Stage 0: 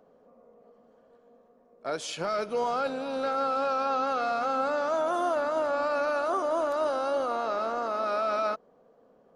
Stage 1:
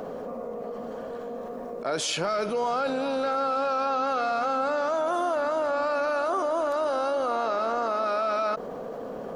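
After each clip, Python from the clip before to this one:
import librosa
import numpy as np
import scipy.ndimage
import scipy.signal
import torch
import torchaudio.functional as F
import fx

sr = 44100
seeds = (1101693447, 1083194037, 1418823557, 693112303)

y = fx.env_flatten(x, sr, amount_pct=70)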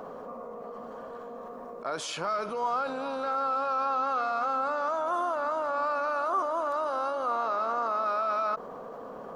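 y = fx.peak_eq(x, sr, hz=1100.0, db=10.5, octaves=0.82)
y = y * librosa.db_to_amplitude(-8.0)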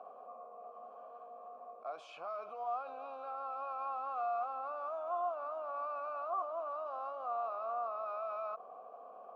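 y = fx.vowel_filter(x, sr, vowel='a')
y = y * librosa.db_to_amplitude(-2.0)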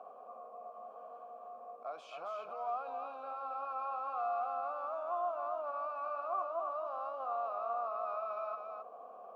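y = x + 10.0 ** (-6.0 / 20.0) * np.pad(x, (int(268 * sr / 1000.0), 0))[:len(x)]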